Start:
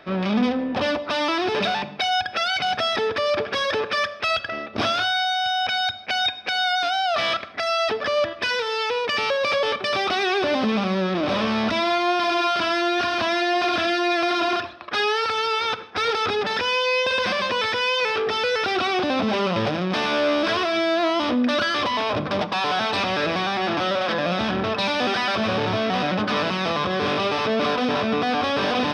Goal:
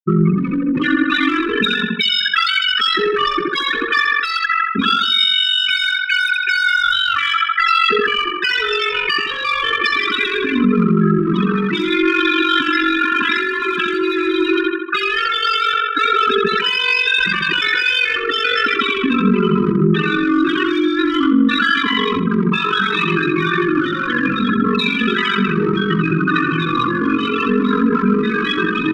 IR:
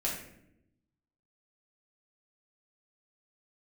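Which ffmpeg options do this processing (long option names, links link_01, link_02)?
-filter_complex "[0:a]afftfilt=real='re*gte(hypot(re,im),0.141)':imag='im*gte(hypot(re,im),0.141)':win_size=1024:overlap=0.75,highpass=frequency=180:width=0.5412,highpass=frequency=180:width=1.3066,asplit=2[link_01][link_02];[link_02]adelay=75,lowpass=frequency=3000:poles=1,volume=-5dB,asplit=2[link_03][link_04];[link_04]adelay=75,lowpass=frequency=3000:poles=1,volume=0.54,asplit=2[link_05][link_06];[link_06]adelay=75,lowpass=frequency=3000:poles=1,volume=0.54,asplit=2[link_07][link_08];[link_08]adelay=75,lowpass=frequency=3000:poles=1,volume=0.54,asplit=2[link_09][link_10];[link_10]adelay=75,lowpass=frequency=3000:poles=1,volume=0.54,asplit=2[link_11][link_12];[link_12]adelay=75,lowpass=frequency=3000:poles=1,volume=0.54,asplit=2[link_13][link_14];[link_14]adelay=75,lowpass=frequency=3000:poles=1,volume=0.54[link_15];[link_03][link_05][link_07][link_09][link_11][link_13][link_15]amix=inputs=7:normalize=0[link_16];[link_01][link_16]amix=inputs=2:normalize=0,aeval=exprs='val(0)*sin(2*PI*23*n/s)':channel_layout=same,asplit=2[link_17][link_18];[link_18]asoftclip=type=tanh:threshold=-26dB,volume=-8.5dB[link_19];[link_17][link_19]amix=inputs=2:normalize=0,acompressor=threshold=-27dB:ratio=2,asuperstop=centerf=690:order=8:qfactor=0.85,alimiter=level_in=27dB:limit=-1dB:release=50:level=0:latency=1,asplit=2[link_20][link_21];[link_21]adelay=2.7,afreqshift=-0.35[link_22];[link_20][link_22]amix=inputs=2:normalize=1,volume=-3.5dB"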